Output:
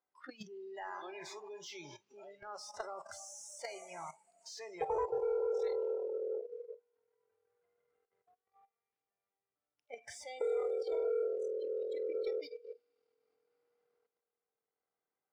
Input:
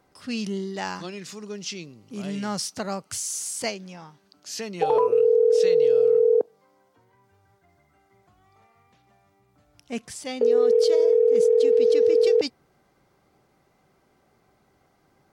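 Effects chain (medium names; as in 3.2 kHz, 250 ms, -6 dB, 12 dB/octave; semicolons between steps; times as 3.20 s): compression 4:1, threshold -31 dBFS, peak gain reduction 13 dB; low-pass 8.2 kHz 12 dB/octave; plate-style reverb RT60 4.7 s, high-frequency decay 0.9×, pre-delay 0 ms, DRR 9 dB; waveshaping leveller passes 1; level held to a coarse grid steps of 14 dB; bass shelf 230 Hz -9 dB; overdrive pedal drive 9 dB, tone 1.8 kHz, clips at -31 dBFS; 6.37–9.95 s: peaking EQ 870 Hz -3 dB 0.72 oct; spectral noise reduction 23 dB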